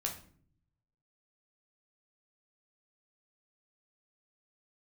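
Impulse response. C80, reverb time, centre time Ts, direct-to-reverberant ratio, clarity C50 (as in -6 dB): 13.5 dB, 0.50 s, 19 ms, 0.0 dB, 9.0 dB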